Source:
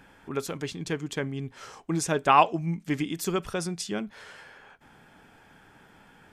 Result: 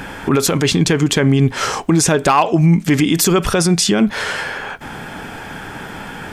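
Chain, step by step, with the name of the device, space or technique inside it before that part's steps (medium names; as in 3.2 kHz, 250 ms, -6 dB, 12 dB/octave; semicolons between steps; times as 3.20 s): loud club master (compression 2.5:1, threshold -30 dBFS, peak gain reduction 11.5 dB; hard clipper -21 dBFS, distortion -25 dB; loudness maximiser +29 dB); trim -4 dB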